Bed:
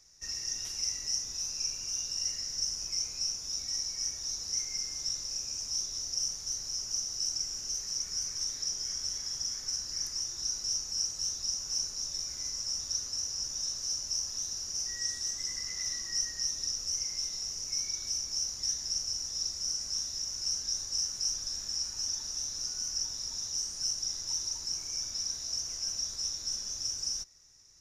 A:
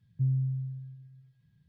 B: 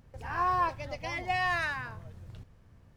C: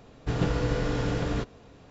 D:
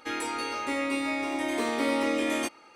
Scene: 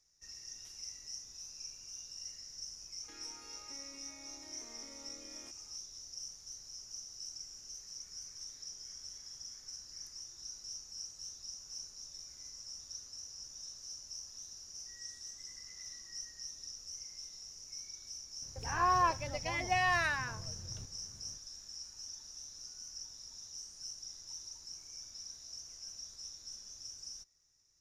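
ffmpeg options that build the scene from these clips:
-filter_complex "[0:a]volume=-13dB[a];[4:a]acompressor=threshold=-38dB:ratio=6:attack=3.2:release=140:knee=1:detection=peak,atrim=end=2.75,asetpts=PTS-STARTPTS,volume=-16dB,afade=t=in:d=0.004:c=hsin,afade=t=out:st=2.746:d=0.004:c=hsin,adelay=3030[b];[2:a]atrim=end=2.96,asetpts=PTS-STARTPTS,volume=-1dB,afade=t=in:d=0.004:c=hsin,afade=t=out:st=2.956:d=0.004:c=hsin,adelay=18420[c];[a][b][c]amix=inputs=3:normalize=0"

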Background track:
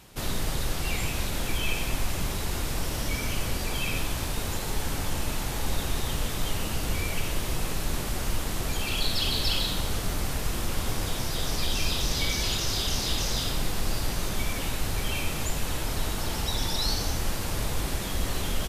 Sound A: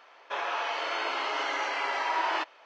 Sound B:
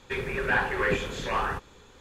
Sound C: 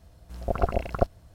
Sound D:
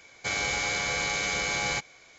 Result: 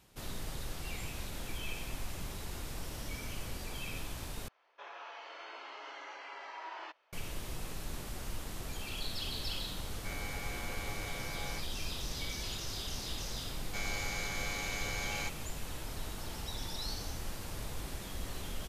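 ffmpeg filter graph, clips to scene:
-filter_complex "[4:a]asplit=2[a][b];[0:a]volume=-12dB[c];[a]lowpass=f=2.3k:p=1[d];[c]asplit=2[e][f];[e]atrim=end=4.484[g];[1:a]atrim=end=2.65,asetpts=PTS-STARTPTS,volume=-16.5dB[h];[f]atrim=start=7.126[i];[d]atrim=end=2.18,asetpts=PTS-STARTPTS,volume=-12.5dB,afade=t=in:d=0.004:c=hsin,afade=t=out:st=2.176:d=0.004:c=hsin,adelay=9800[j];[b]atrim=end=2.18,asetpts=PTS-STARTPTS,volume=-10.5dB,afade=t=in:d=0.004:c=hsin,afade=t=out:st=2.176:d=0.004:c=hsin,adelay=13490[k];[g][h]acrossfade=d=0.004:c1=hsin:c2=hsin[l];[l][i]acrossfade=d=0.004:c1=hsin:c2=hsin[m];[m][j][k]amix=inputs=3:normalize=0"

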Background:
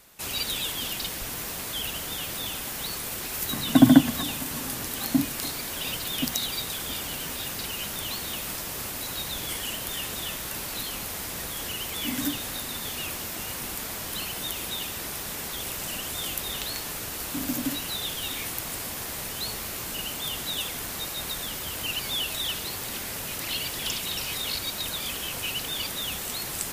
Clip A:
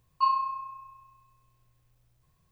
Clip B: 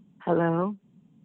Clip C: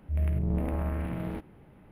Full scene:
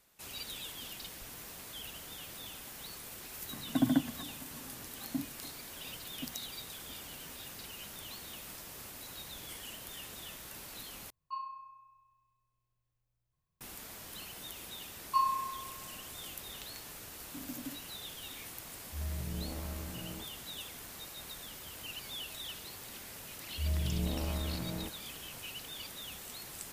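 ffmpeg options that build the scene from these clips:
-filter_complex "[1:a]asplit=2[a][b];[3:a]asplit=2[c][d];[0:a]volume=-13.5dB,asplit=2[e][f];[e]atrim=end=11.104[g];[a]atrim=end=2.51,asetpts=PTS-STARTPTS,volume=-16dB[h];[f]atrim=start=13.606[i];[b]atrim=end=2.51,asetpts=PTS-STARTPTS,volume=-4.5dB,afade=t=in:d=0.004:c=hsin,afade=t=out:st=2.506:d=0.004:c=hsin,adelay=14930[j];[c]atrim=end=1.91,asetpts=PTS-STARTPTS,volume=-11dB,afade=t=in:d=0.004:c=hsin,afade=t=out:st=1.906:d=0.004:c=hsin,adelay=18840[k];[d]atrim=end=1.91,asetpts=PTS-STARTPTS,volume=-5.5dB,afade=t=in:d=0.004:c=hsin,afade=t=out:st=1.906:d=0.004:c=hsin,adelay=23490[l];[g][h]acrossfade=d=0.004:c1=hsin:c2=hsin[m];[m][i]acrossfade=d=0.004:c1=hsin:c2=hsin[n];[n][j][k][l]amix=inputs=4:normalize=0"

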